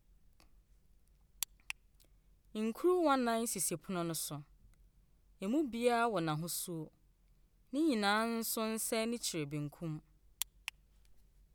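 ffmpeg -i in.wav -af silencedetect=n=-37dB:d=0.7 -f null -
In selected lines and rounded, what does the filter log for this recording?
silence_start: 0.00
silence_end: 1.43 | silence_duration: 1.43
silence_start: 1.71
silence_end: 2.56 | silence_duration: 0.85
silence_start: 4.37
silence_end: 5.42 | silence_duration: 1.05
silence_start: 6.83
silence_end: 7.74 | silence_duration: 0.91
silence_start: 10.69
silence_end: 11.55 | silence_duration: 0.86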